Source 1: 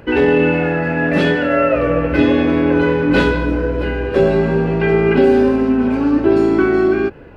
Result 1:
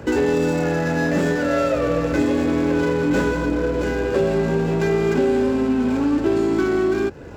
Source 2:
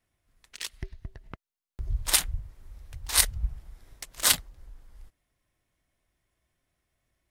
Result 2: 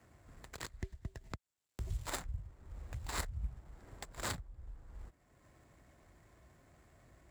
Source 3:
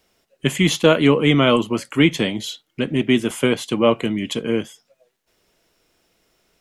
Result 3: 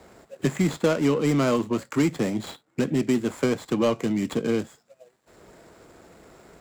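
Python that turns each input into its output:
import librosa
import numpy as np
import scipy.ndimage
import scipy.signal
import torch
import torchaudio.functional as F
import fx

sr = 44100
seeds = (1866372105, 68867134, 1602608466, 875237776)

p1 = scipy.ndimage.median_filter(x, 15, mode='constant')
p2 = scipy.signal.sosfilt(scipy.signal.butter(2, 50.0, 'highpass', fs=sr, output='sos'), p1)
p3 = fx.peak_eq(p2, sr, hz=7500.0, db=10.0, octaves=0.25)
p4 = np.clip(p3, -10.0 ** (-19.5 / 20.0), 10.0 ** (-19.5 / 20.0))
p5 = p3 + (p4 * librosa.db_to_amplitude(-6.5))
p6 = fx.band_squash(p5, sr, depth_pct=70)
y = p6 * librosa.db_to_amplitude(-7.0)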